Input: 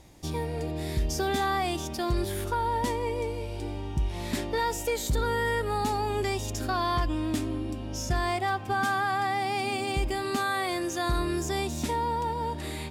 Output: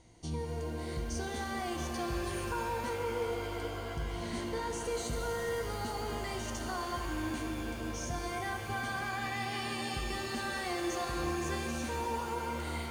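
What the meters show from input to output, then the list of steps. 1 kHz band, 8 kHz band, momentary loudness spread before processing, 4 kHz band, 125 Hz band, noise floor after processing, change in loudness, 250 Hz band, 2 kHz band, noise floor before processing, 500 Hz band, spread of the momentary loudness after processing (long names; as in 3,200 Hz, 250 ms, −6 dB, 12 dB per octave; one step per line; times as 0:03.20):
−8.5 dB, −5.0 dB, 6 LU, −5.5 dB, −7.5 dB, −39 dBFS, −7.0 dB, −6.0 dB, −6.0 dB, −36 dBFS, −6.0 dB, 4 LU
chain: EQ curve with evenly spaced ripples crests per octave 1.9, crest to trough 9 dB
brickwall limiter −22 dBFS, peak gain reduction 8 dB
flanger 0.69 Hz, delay 9.4 ms, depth 7.8 ms, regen +86%
downsampling to 22,050 Hz
reverb with rising layers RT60 3.7 s, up +7 semitones, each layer −2 dB, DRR 4.5 dB
level −3 dB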